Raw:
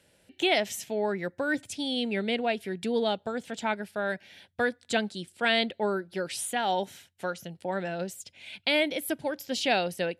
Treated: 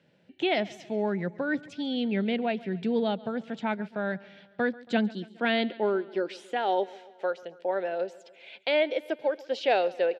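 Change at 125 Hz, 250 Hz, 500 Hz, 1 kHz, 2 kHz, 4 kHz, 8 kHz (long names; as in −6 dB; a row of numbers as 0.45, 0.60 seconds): +2.0 dB, +2.5 dB, +2.0 dB, 0.0 dB, −2.5 dB, −5.5 dB, below −15 dB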